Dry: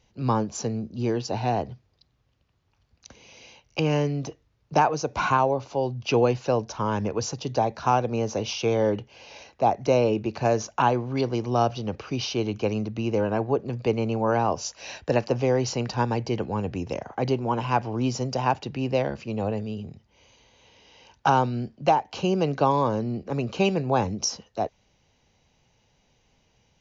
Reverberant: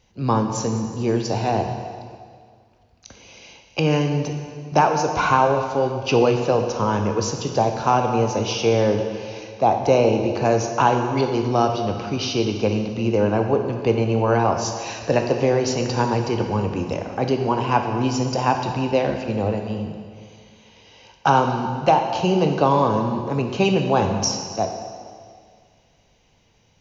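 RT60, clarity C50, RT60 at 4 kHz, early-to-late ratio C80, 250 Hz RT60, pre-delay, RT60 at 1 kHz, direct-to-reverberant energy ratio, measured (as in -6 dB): 2.0 s, 5.5 dB, 1.9 s, 6.5 dB, 2.0 s, 8 ms, 2.0 s, 4.0 dB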